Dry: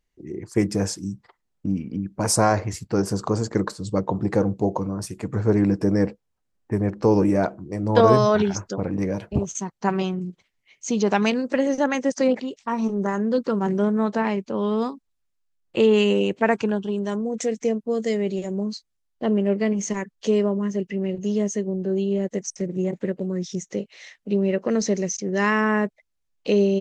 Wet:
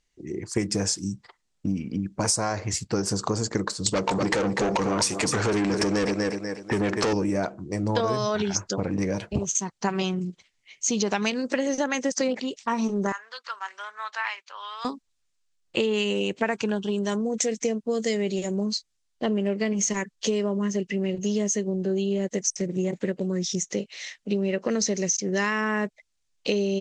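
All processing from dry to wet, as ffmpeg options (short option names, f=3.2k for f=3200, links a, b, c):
-filter_complex "[0:a]asettb=1/sr,asplit=3[a][b][c];[a]atrim=end=3.864[d];[b]atrim=start=3.86:end=7.13,asetpts=PTS-STARTPTS,afade=t=in:d=0.004:c=qsin,afade=t=out:st=3.266:d=0.004:c=qsin,aecho=1:1:245|490|735:0.2|0.0698|0.0244,atrim=end_sample=144207,acompressor=threshold=-24dB:ratio=3:attack=3.2:release=140:knee=1:detection=peak,asplit=2[e][f];[f]highpass=f=720:p=1,volume=24dB,asoftclip=type=tanh:threshold=-12.5dB[g];[e][g]amix=inputs=2:normalize=0,lowpass=f=7.8k:p=1,volume=-6dB[h];[c]atrim=start=7.126[i];[d][h]acrossfade=d=0.004:c1=hsin:c2=qsin[j];[j][i]acrossfade=d=0.004:c1=qsin:c2=hsin,asettb=1/sr,asplit=3[k][l][m];[k]atrim=end=13.124[n];[l]atrim=start=13.12:end=14.85,asetpts=PTS-STARTPTS,afade=t=in:d=0.004:c=qsin,afade=t=out:st=1.726:d=0.004:c=qsin,highpass=f=1.1k:w=0.5412,highpass=f=1.1k:w=1.3066,equalizer=f=7.7k:w=0.7:g=-10.5[o];[m]atrim=start=14.846[p];[n][o]acrossfade=d=0.004:c1=hsin:c2=qsin[q];[q][p]acrossfade=d=0.004:c1=qsin:c2=hsin,lowpass=f=8.7k:w=0.5412,lowpass=f=8.7k:w=1.3066,highshelf=f=2.3k:g=11,acompressor=threshold=-21dB:ratio=10"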